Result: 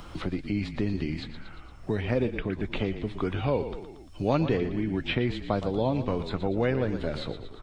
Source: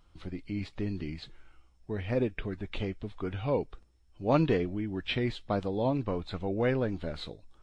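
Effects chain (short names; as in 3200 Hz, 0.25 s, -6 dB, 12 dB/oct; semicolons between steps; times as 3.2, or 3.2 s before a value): frequency-shifting echo 0.115 s, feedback 44%, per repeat -36 Hz, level -11.5 dB; three-band squash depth 70%; gain +3 dB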